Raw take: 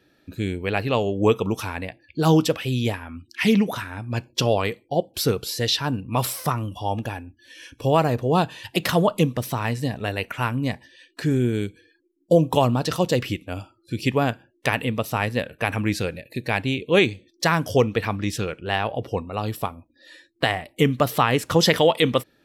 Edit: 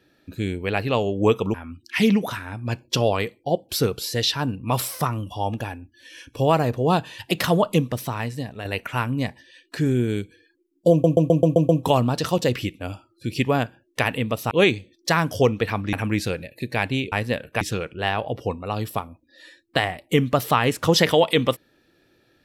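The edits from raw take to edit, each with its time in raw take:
1.54–2.99 s: delete
9.27–10.10 s: fade out, to -7.5 dB
12.36 s: stutter 0.13 s, 7 plays
15.18–15.67 s: swap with 16.86–18.28 s

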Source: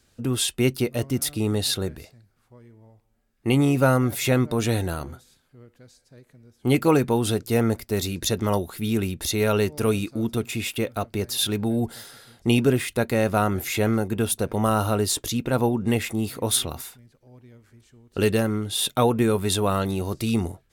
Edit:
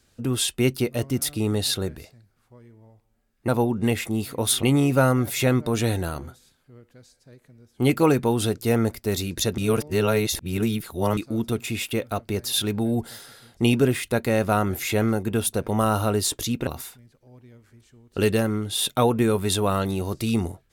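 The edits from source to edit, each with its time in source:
8.43–10.02 s: reverse
15.52–16.67 s: move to 3.48 s

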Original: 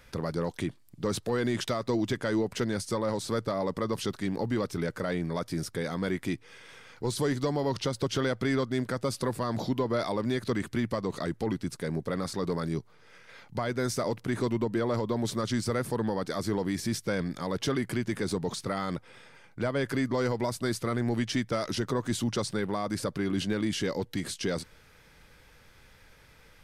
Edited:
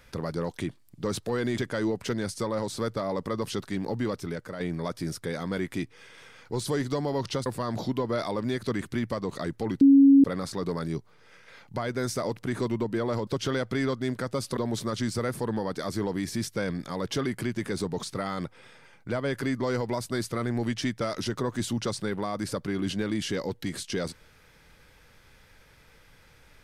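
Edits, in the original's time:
1.58–2.09 s: delete
4.56–5.11 s: fade out linear, to -7 dB
7.97–9.27 s: move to 15.08 s
11.62–12.05 s: bleep 276 Hz -12 dBFS

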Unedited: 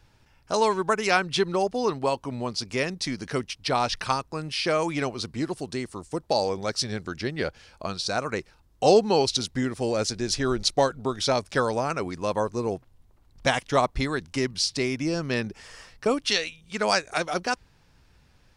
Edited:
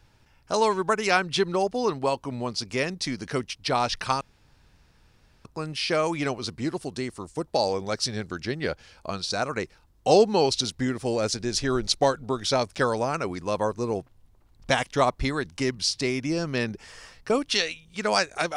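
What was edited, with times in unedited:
4.21 s: insert room tone 1.24 s

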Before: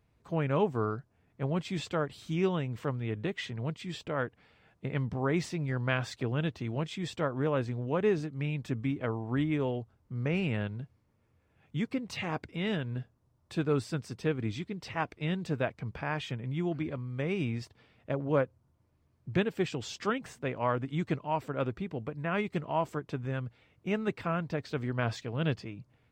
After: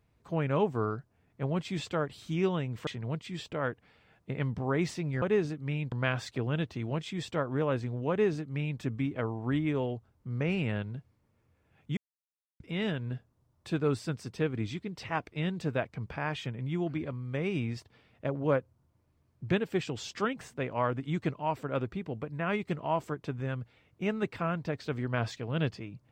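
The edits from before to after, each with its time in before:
2.87–3.42 s: delete
7.95–8.65 s: copy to 5.77 s
11.82–12.45 s: mute

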